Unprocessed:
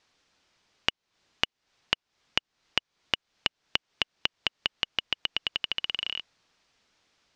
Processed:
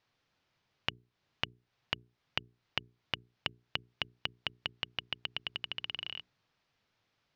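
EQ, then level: air absorption 120 m; bell 120 Hz +11.5 dB 0.72 oct; notches 60/120/180/240/300/360/420 Hz; -6.5 dB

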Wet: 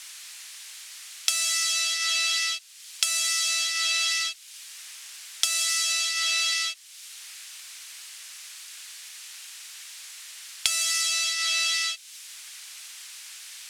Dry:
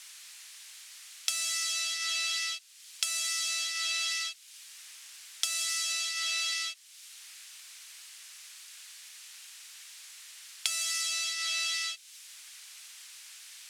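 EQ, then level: low shelf 220 Hz +8 dB; +6.5 dB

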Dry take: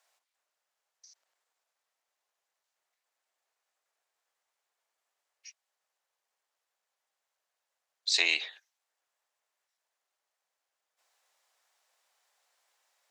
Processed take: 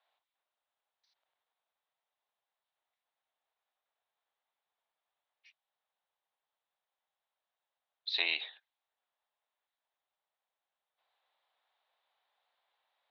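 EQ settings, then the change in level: synth low-pass 3700 Hz, resonance Q 4.5; air absorption 330 m; bell 830 Hz +6 dB 1.1 oct; -6.5 dB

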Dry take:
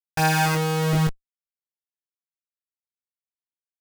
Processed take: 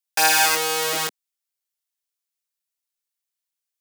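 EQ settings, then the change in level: Bessel high-pass 420 Hz, order 6; high shelf 2400 Hz +11 dB; +1.0 dB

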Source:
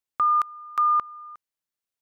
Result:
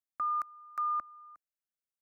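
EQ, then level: fixed phaser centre 640 Hz, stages 8; -8.5 dB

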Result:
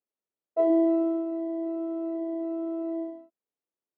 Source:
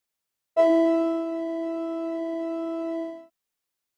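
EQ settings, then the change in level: band-pass 380 Hz, Q 1.2; 0.0 dB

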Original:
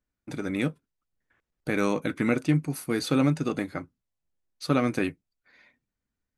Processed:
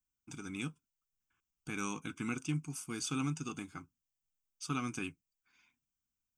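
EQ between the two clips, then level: pre-emphasis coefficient 0.8; fixed phaser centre 2800 Hz, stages 8; +3.5 dB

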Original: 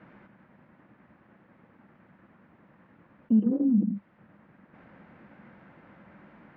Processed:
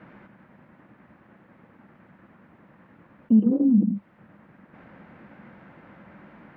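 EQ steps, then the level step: dynamic EQ 1700 Hz, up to -6 dB, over -58 dBFS, Q 2; +4.5 dB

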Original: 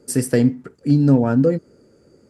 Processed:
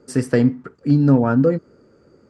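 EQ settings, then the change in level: air absorption 86 m; bell 1200 Hz +7 dB 0.84 oct; 0.0 dB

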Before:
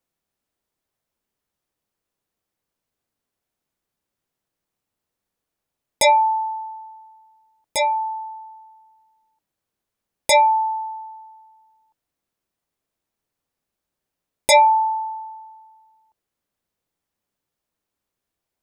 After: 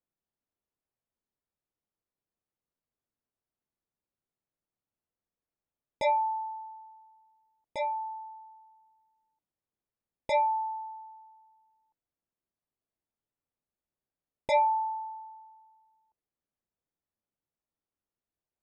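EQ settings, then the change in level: tape spacing loss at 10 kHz 31 dB; -8.5 dB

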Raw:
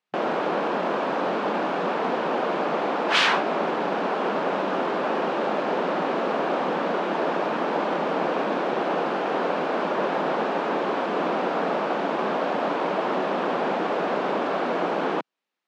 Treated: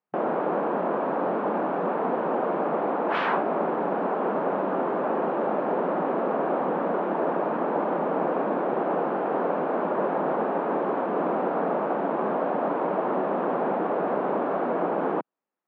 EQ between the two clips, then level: LPF 1200 Hz 12 dB/oct; 0.0 dB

